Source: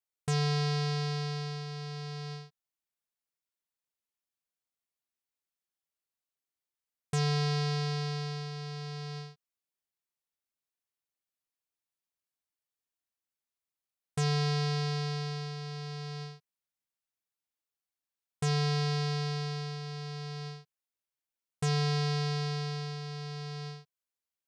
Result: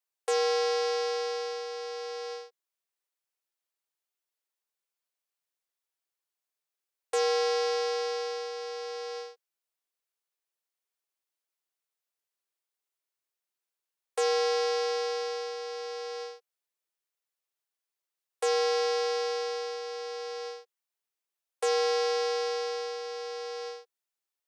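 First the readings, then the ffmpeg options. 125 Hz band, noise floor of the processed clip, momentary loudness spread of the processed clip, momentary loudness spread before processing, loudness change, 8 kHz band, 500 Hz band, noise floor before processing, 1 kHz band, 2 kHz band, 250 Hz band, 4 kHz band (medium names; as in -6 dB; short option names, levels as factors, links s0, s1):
under -40 dB, under -85 dBFS, 13 LU, 13 LU, +2.5 dB, +4.0 dB, +11.5 dB, under -85 dBFS, +6.0 dB, +3.0 dB, no reading, +2.0 dB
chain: -af "afreqshift=330,acontrast=85,volume=0.562"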